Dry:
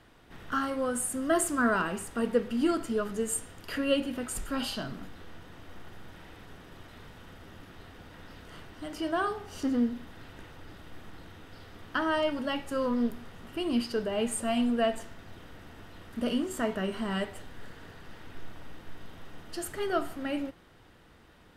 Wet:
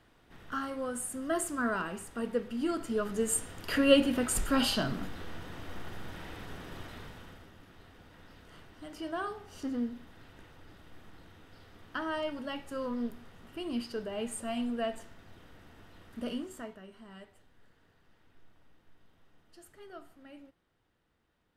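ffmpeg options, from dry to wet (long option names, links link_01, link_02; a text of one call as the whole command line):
ffmpeg -i in.wav -af "volume=5dB,afade=type=in:start_time=2.66:duration=1.3:silence=0.298538,afade=type=out:start_time=6.79:duration=0.73:silence=0.266073,afade=type=out:start_time=16.29:duration=0.51:silence=0.237137" out.wav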